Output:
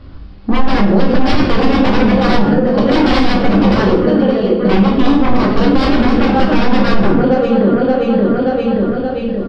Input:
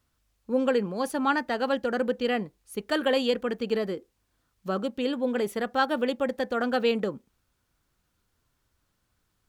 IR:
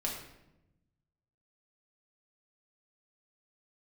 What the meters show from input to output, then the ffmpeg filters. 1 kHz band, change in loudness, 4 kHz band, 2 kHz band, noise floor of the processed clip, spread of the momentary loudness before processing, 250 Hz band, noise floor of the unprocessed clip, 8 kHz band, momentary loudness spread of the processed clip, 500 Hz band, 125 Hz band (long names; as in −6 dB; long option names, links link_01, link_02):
+14.5 dB, +14.5 dB, +12.5 dB, +12.0 dB, −28 dBFS, 8 LU, +20.0 dB, −75 dBFS, can't be measured, 3 LU, +13.5 dB, +26.5 dB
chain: -filter_complex "[0:a]aecho=1:1:577|1154|1731|2308|2885:0.224|0.116|0.0605|0.0315|0.0164,acontrast=89,aresample=11025,aeval=exprs='0.0794*(abs(mod(val(0)/0.0794+3,4)-2)-1)':channel_layout=same,aresample=44100,tiltshelf=frequency=810:gain=7,acompressor=threshold=-35dB:ratio=4,asoftclip=type=tanh:threshold=-31dB,bandreject=frequency=900:width=27[link_01];[1:a]atrim=start_sample=2205,asetrate=57330,aresample=44100[link_02];[link_01][link_02]afir=irnorm=-1:irlink=0,alimiter=level_in=26dB:limit=-1dB:release=50:level=0:latency=1,volume=-1dB"